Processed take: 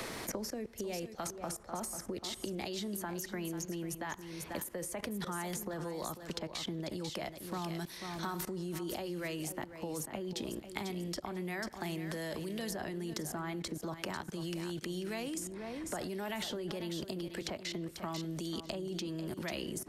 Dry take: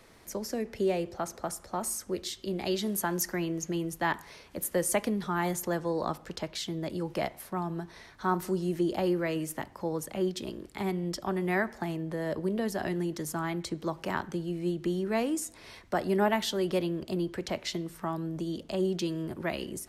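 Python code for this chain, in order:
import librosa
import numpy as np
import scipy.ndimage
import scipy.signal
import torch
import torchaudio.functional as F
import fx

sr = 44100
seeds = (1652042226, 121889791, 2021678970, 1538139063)

y = fx.level_steps(x, sr, step_db=21)
y = fx.echo_feedback(y, sr, ms=492, feedback_pct=16, wet_db=-11.5)
y = fx.band_squash(y, sr, depth_pct=100)
y = y * librosa.db_to_amplitude(2.5)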